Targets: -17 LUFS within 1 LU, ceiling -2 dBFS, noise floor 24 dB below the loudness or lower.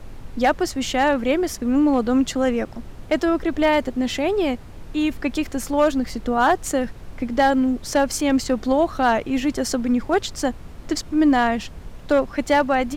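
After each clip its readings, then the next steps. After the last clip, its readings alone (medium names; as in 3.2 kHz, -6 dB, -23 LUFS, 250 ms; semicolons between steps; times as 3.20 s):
clipped samples 0.7%; clipping level -9.5 dBFS; noise floor -38 dBFS; noise floor target -45 dBFS; loudness -21.0 LUFS; peak level -9.5 dBFS; loudness target -17.0 LUFS
-> clip repair -9.5 dBFS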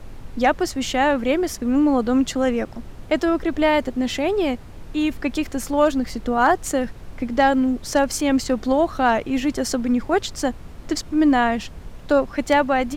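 clipped samples 0.0%; noise floor -38 dBFS; noise floor target -45 dBFS
-> noise print and reduce 7 dB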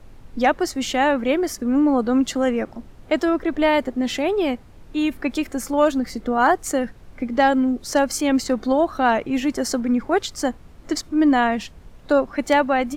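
noise floor -45 dBFS; loudness -21.0 LUFS; peak level -4.5 dBFS; loudness target -17.0 LUFS
-> trim +4 dB; peak limiter -2 dBFS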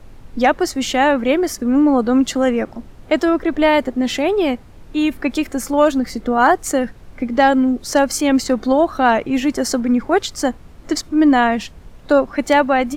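loudness -17.0 LUFS; peak level -2.0 dBFS; noise floor -41 dBFS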